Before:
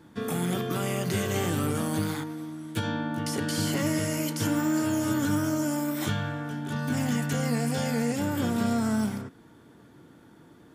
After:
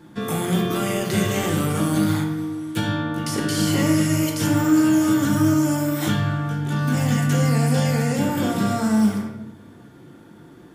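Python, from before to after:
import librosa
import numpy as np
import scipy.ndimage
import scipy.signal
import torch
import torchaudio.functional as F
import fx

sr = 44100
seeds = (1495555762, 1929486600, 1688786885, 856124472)

y = fx.room_shoebox(x, sr, seeds[0], volume_m3=270.0, walls='mixed', distance_m=0.88)
y = y * 10.0 ** (4.0 / 20.0)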